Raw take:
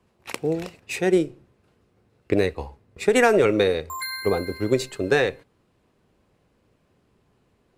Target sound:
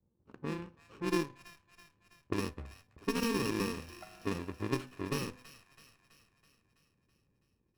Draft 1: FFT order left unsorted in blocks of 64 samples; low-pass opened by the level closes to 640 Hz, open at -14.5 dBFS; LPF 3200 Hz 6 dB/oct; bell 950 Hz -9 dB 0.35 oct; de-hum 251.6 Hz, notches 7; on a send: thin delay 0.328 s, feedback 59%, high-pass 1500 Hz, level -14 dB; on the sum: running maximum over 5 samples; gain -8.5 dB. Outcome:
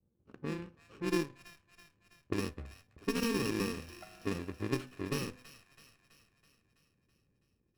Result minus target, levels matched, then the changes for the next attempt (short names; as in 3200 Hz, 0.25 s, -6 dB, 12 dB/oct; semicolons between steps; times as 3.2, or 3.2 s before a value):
1000 Hz band -3.0 dB
change: bell 950 Hz -2 dB 0.35 oct